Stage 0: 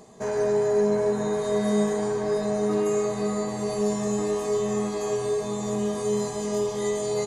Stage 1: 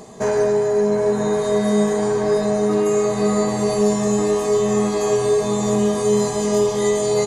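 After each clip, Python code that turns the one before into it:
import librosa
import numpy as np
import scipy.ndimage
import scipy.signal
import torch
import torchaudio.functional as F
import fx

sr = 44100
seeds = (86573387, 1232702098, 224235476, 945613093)

y = fx.rider(x, sr, range_db=10, speed_s=0.5)
y = y * 10.0 ** (7.0 / 20.0)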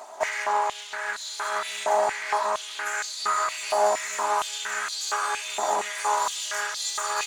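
y = fx.lower_of_two(x, sr, delay_ms=3.1)
y = fx.filter_held_highpass(y, sr, hz=4.3, low_hz=790.0, high_hz=4100.0)
y = y * 10.0 ** (-3.0 / 20.0)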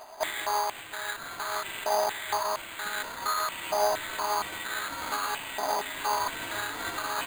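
y = np.repeat(x[::8], 8)[:len(x)]
y = y * 10.0 ** (-4.0 / 20.0)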